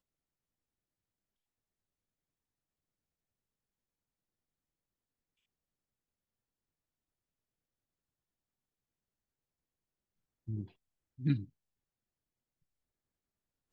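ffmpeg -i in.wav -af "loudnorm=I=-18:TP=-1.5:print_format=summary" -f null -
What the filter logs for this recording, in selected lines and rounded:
Input Integrated:    -36.6 LUFS
Input True Peak:     -19.0 dBTP
Input LRA:             0.6 LU
Input Threshold:     -48.1 LUFS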